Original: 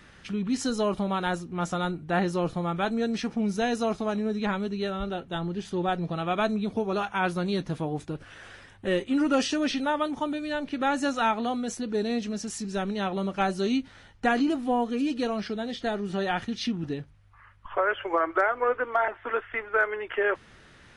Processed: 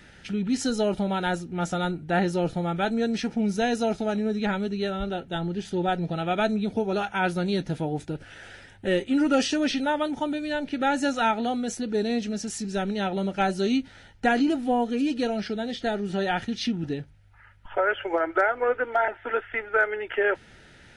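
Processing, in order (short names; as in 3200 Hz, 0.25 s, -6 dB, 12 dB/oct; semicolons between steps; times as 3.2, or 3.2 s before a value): Butterworth band-stop 1100 Hz, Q 3.7; gain +2 dB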